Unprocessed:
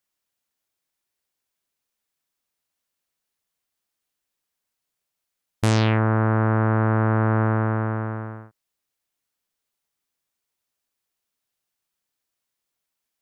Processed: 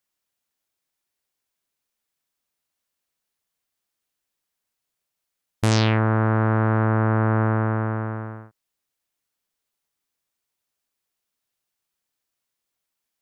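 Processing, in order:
0:05.71–0:06.85: parametric band 5,200 Hz +6 dB 1.2 octaves

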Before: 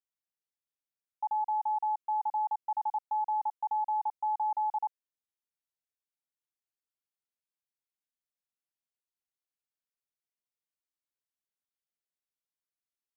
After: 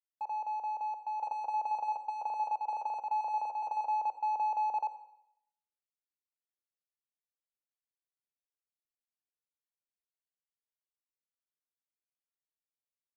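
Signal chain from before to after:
noise gate −45 dBFS, range −8 dB
leveller curve on the samples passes 3
resonant band-pass 530 Hz, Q 2.2
backwards echo 1,017 ms −4.5 dB
on a send at −10.5 dB: convolution reverb RT60 0.75 s, pre-delay 48 ms
on the sum: level +5.5 dB

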